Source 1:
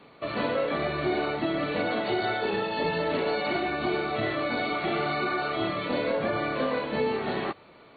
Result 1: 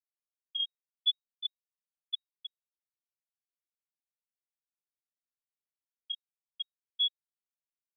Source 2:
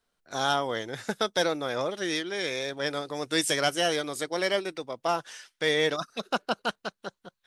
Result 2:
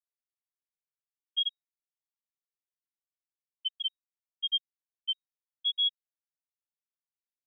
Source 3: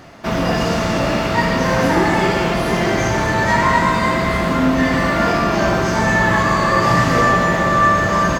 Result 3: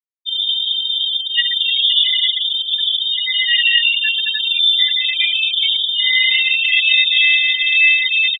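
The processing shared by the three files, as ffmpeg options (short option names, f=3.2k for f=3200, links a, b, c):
-af "afftfilt=real='re*gte(hypot(re,im),0.562)':imag='im*gte(hypot(re,im),0.562)':win_size=1024:overlap=0.75,lowpass=f=3.2k:t=q:w=0.5098,lowpass=f=3.2k:t=q:w=0.6013,lowpass=f=3.2k:t=q:w=0.9,lowpass=f=3.2k:t=q:w=2.563,afreqshift=-3800,volume=2.5dB"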